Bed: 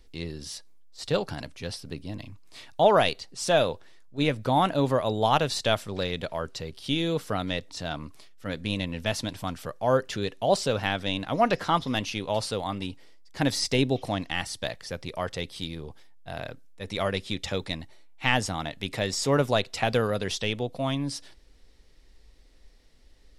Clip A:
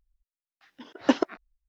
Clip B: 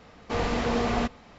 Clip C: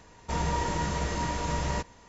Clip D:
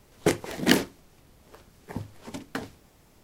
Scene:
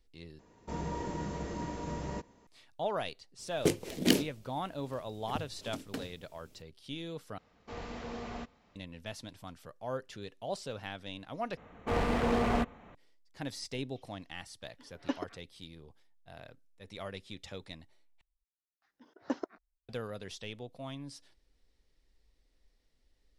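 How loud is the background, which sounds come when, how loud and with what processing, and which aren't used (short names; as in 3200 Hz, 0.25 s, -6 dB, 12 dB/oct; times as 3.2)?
bed -14.5 dB
0.39 replace with C -14 dB + bell 290 Hz +11.5 dB 2.5 oct
3.39 add D -4.5 dB + band shelf 1200 Hz -8.5 dB
7.38 replace with B -15.5 dB
11.57 replace with B -2.5 dB + Wiener smoothing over 9 samples
14 add A -15 dB + comb 7 ms, depth 52%
18.21 replace with A -13 dB + bell 2900 Hz -10 dB 0.99 oct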